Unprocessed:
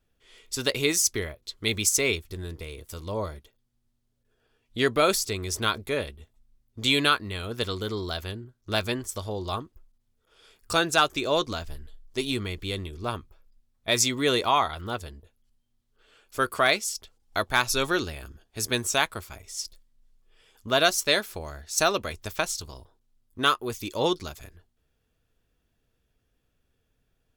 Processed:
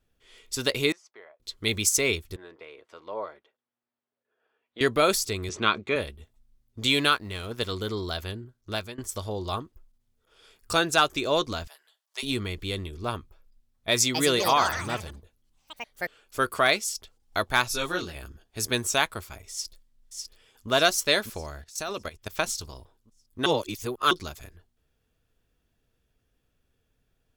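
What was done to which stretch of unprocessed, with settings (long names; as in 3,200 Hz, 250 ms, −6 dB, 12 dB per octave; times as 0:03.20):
0:00.92–0:01.40: four-pole ladder band-pass 920 Hz, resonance 35%
0:02.36–0:04.81: band-pass filter 510–2,100 Hz
0:05.49–0:05.96: loudspeaker in its box 130–6,100 Hz, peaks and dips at 190 Hz +6 dB, 350 Hz +4 dB, 1,200 Hz +6 dB, 2,400 Hz +7 dB, 5,100 Hz −9 dB
0:06.87–0:07.72: mu-law and A-law mismatch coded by A
0:08.38–0:08.98: fade out equal-power, to −20.5 dB
0:11.67–0:12.23: high-pass filter 710 Hz 24 dB per octave
0:13.89–0:16.46: delay with pitch and tempo change per echo 254 ms, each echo +5 semitones, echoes 3, each echo −6 dB
0:17.68–0:18.15: micro pitch shift up and down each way 12 cents
0:19.51–0:20.69: delay throw 600 ms, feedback 50%, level −4 dB
0:21.62–0:22.33: output level in coarse steps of 16 dB
0:23.46–0:24.11: reverse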